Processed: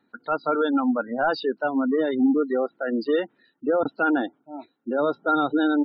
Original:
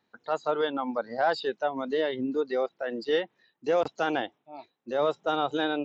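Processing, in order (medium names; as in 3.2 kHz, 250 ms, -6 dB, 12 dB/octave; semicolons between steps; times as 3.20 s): small resonant body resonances 270/1400 Hz, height 12 dB, ringing for 30 ms; in parallel at -9 dB: wavefolder -23.5 dBFS; on the sum: spectral gate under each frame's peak -25 dB strong; resampled via 11.025 kHz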